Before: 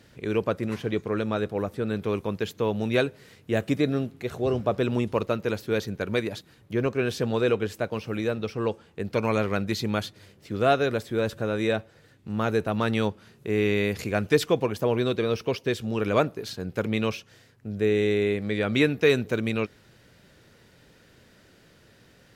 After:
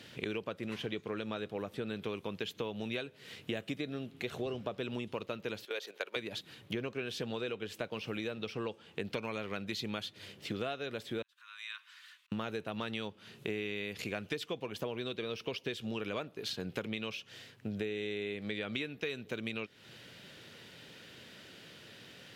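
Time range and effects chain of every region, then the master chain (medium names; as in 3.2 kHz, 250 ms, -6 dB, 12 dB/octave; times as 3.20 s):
5.65–6.16 s: high-pass 430 Hz 24 dB/octave + level held to a coarse grid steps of 15 dB
11.22–12.32 s: steep high-pass 980 Hz 96 dB/octave + compression 2.5:1, threshold -53 dBFS + slow attack 560 ms
whole clip: high-pass 120 Hz; peaking EQ 3.1 kHz +10 dB 1 oct; compression 16:1, threshold -35 dBFS; trim +1 dB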